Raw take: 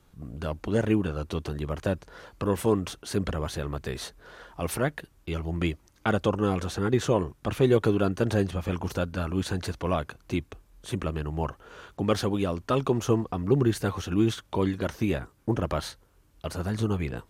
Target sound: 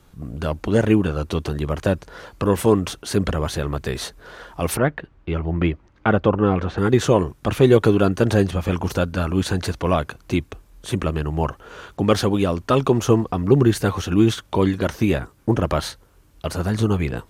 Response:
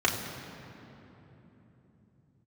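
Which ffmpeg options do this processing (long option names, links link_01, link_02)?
-filter_complex "[0:a]asettb=1/sr,asplit=3[link_01][link_02][link_03];[link_01]atrim=end=4.774[link_04];[link_02]atrim=start=4.77:end=6.78,asetpts=PTS-STARTPTS,afade=type=in:duration=0.004:curve=qsin,afade=type=out:start_time=2.006:duration=0.004:curve=qsin,lowpass=2300[link_05];[link_03]atrim=start=6.776[link_06];[link_04][link_05]acrossfade=duration=0.004:curve1=hsin:curve2=qsin[link_07];[link_07][link_06]acrossfade=duration=0.004:curve1=qsin:curve2=hsin,volume=7.5dB"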